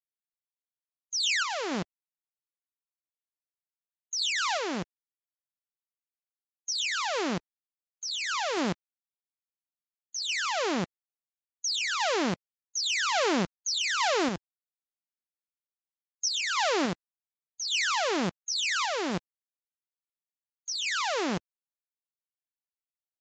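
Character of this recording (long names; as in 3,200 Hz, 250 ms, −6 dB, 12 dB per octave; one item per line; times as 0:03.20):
sample-and-hold tremolo
a quantiser's noise floor 10 bits, dither none
Ogg Vorbis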